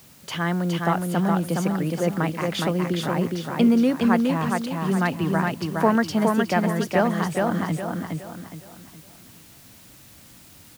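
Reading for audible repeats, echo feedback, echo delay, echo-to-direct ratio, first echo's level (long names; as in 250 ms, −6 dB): 4, 36%, 415 ms, −2.5 dB, −3.0 dB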